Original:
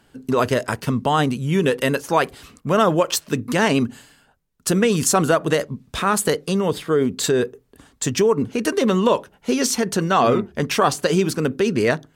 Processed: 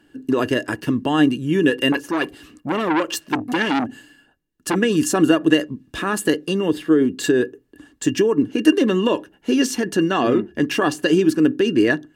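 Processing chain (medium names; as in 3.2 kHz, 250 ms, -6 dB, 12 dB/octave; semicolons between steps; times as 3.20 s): small resonant body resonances 310/1700/2800 Hz, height 18 dB, ringing for 60 ms; 1.92–4.76 s: transformer saturation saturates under 1.5 kHz; trim -5.5 dB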